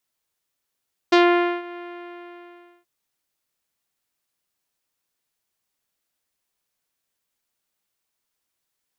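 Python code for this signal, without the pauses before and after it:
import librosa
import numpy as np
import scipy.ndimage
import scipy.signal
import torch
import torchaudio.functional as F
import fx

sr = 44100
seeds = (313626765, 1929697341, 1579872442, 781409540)

y = fx.sub_voice(sr, note=65, wave='saw', cutoff_hz=2700.0, q=0.93, env_oct=1.0, env_s=0.14, attack_ms=9.5, decay_s=0.49, sustain_db=-22, release_s=1.08, note_s=0.65, slope=24)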